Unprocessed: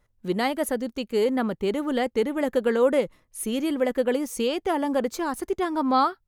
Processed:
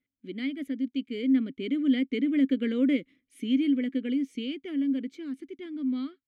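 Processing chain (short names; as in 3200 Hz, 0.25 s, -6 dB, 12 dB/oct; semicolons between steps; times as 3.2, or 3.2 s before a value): Doppler pass-by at 2.63, 8 m/s, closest 9.3 m; vowel filter i; gain +9 dB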